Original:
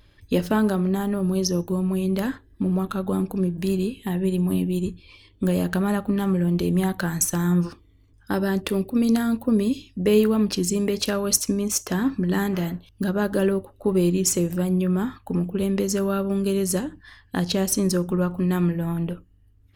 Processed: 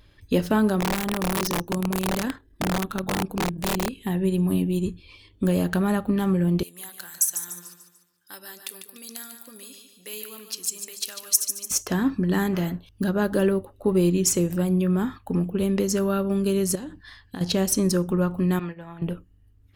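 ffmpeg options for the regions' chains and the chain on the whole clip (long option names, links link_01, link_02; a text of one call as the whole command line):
ffmpeg -i in.wav -filter_complex "[0:a]asettb=1/sr,asplit=3[link_01][link_02][link_03];[link_01]atrim=end=0.804[link_04];[link_02]atrim=start=0.8:end=4.01,asetpts=PTS-STARTPTS,afade=type=in:duration=0.004:curve=qsin,afade=type=out:start_time=3.206:duration=0.004:curve=qsin,equalizer=frequency=93:width=1.9:gain=-4,tremolo=f=38:d=0.4,aeval=exprs='(mod(8.91*val(0)+1,2)-1)/8.91':channel_layout=same[link_05];[link_03]atrim=start=4.006[link_06];[link_04][link_05]acrossfade=duration=0.004:curve1=hsin:curve2=qsin[link_07];[link_07][link_06]acrossfade=duration=0.004:curve1=qsin:curve2=hsin,asettb=1/sr,asplit=3[link_08][link_09][link_10];[link_08]atrim=end=6.634[link_11];[link_09]atrim=start=6.63:end=11.71,asetpts=PTS-STARTPTS,afade=type=in:duration=0.004:curve=qsin,afade=type=out:start_time=5.076:duration=0.004:curve=qsin,aderivative,aecho=1:1:147|294|441|588|735:0.376|0.162|0.0695|0.0299|0.0128,atrim=end_sample=224028[link_12];[link_10]atrim=start=11.706[link_13];[link_11][link_12]acrossfade=duration=0.004:curve1=hsin:curve2=qsin[link_14];[link_14][link_13]acrossfade=duration=0.004:curve1=qsin:curve2=hsin,asettb=1/sr,asplit=3[link_15][link_16][link_17];[link_15]atrim=end=16.754[link_18];[link_16]atrim=start=16.75:end=17.41,asetpts=PTS-STARTPTS,afade=type=in:duration=0.004:curve=qsin,afade=type=out:start_time=0.656:duration=0.004:curve=qsin,equalizer=frequency=4200:width_type=o:width=0.64:gain=5.5,acompressor=threshold=-30dB:ratio=12:attack=3.2:release=140:knee=1:detection=peak[link_19];[link_17]atrim=start=17.406[link_20];[link_18][link_19]acrossfade=duration=0.004:curve1=hsin:curve2=qsin[link_21];[link_21][link_20]acrossfade=duration=0.004:curve1=qsin:curve2=hsin,asettb=1/sr,asplit=3[link_22][link_23][link_24];[link_22]atrim=end=18.594[link_25];[link_23]atrim=start=18.59:end=19.02,asetpts=PTS-STARTPTS,afade=type=in:duration=0.004:curve=qsin,afade=type=out:start_time=0.426:duration=0.004:curve=qsin,agate=range=-33dB:threshold=-21dB:ratio=3:release=100:detection=peak,acrossover=split=530 5600:gain=0.251 1 0.0794[link_26][link_27][link_28];[link_26][link_27][link_28]amix=inputs=3:normalize=0,acompressor=mode=upward:threshold=-36dB:ratio=2.5:attack=3.2:release=140:knee=2.83:detection=peak[link_29];[link_24]atrim=start=19.016[link_30];[link_25][link_29]acrossfade=duration=0.004:curve1=hsin:curve2=qsin[link_31];[link_31][link_30]acrossfade=duration=0.004:curve1=qsin:curve2=hsin" out.wav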